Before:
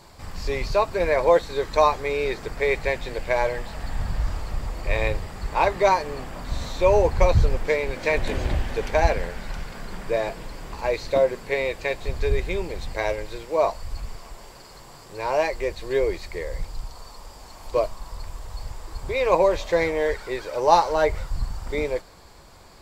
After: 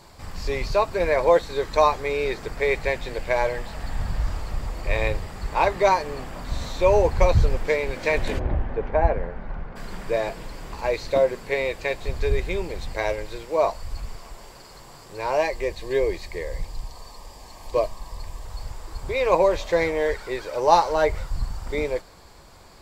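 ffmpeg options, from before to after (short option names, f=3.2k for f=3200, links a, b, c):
-filter_complex "[0:a]asplit=3[a][b][c];[a]afade=t=out:st=8.38:d=0.02[d];[b]lowpass=1.3k,afade=t=in:st=8.38:d=0.02,afade=t=out:st=9.75:d=0.02[e];[c]afade=t=in:st=9.75:d=0.02[f];[d][e][f]amix=inputs=3:normalize=0,asettb=1/sr,asplit=3[g][h][i];[g]atrim=end=15.384[j];[h]atrim=start=15.38:end=18.45,asetpts=PTS-STARTPTS,afade=t=in:d=0.004:c=qsin,afade=t=out:st=3.066:d=0.004:c=qsin,asuperstop=centerf=1400:order=8:qfactor=5.7[k];[i]atrim=start=18.446[l];[j][k]acrossfade=d=0.004:c1=hsin:c2=qsin[m];[m][l]acrossfade=d=0.004:c1=qsin:c2=hsin"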